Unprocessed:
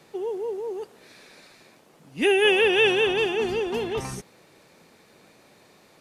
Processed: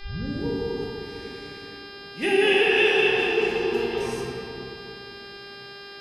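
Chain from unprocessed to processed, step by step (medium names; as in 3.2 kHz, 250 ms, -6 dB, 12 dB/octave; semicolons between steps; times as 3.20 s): tape start-up on the opening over 0.44 s; mains buzz 400 Hz, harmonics 13, -42 dBFS -1 dB/octave; peaking EQ 2.1 kHz +3 dB; reverberation RT60 2.8 s, pre-delay 6 ms, DRR -4.5 dB; trim -6 dB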